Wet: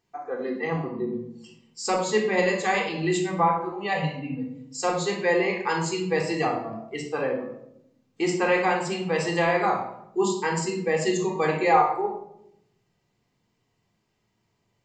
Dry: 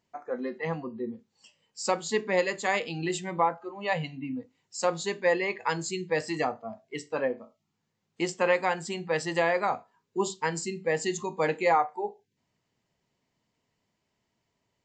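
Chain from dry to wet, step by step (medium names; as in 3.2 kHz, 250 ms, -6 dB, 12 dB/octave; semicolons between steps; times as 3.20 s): simulated room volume 1900 m³, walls furnished, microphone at 3.7 m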